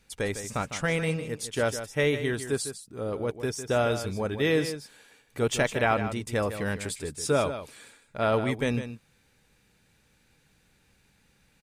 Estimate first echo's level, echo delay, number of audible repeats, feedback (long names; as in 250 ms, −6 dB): −10.5 dB, 154 ms, 1, repeats not evenly spaced